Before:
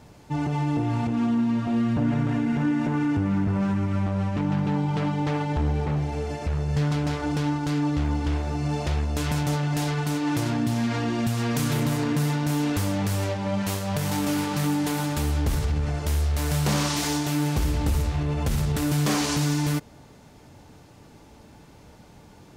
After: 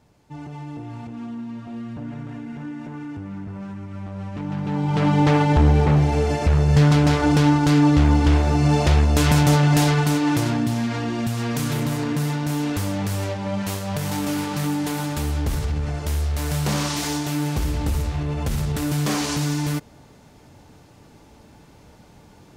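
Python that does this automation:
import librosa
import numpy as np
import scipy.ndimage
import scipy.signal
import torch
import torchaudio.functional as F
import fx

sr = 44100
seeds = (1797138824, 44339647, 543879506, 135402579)

y = fx.gain(x, sr, db=fx.line((3.89, -9.5), (4.63, -2.0), (5.16, 9.0), (9.76, 9.0), (10.92, 0.5)))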